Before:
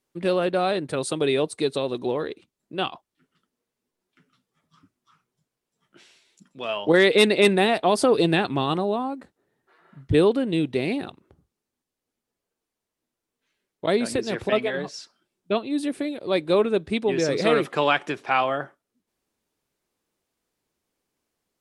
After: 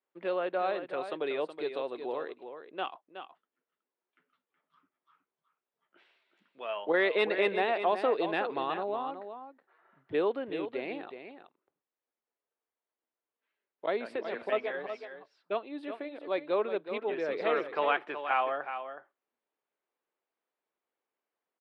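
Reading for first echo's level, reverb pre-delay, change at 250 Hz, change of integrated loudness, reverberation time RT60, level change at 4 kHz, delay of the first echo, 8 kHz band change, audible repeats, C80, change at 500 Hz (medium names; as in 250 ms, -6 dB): -9.5 dB, no reverb, -15.0 dB, -9.5 dB, no reverb, -14.0 dB, 371 ms, under -30 dB, 1, no reverb, -8.5 dB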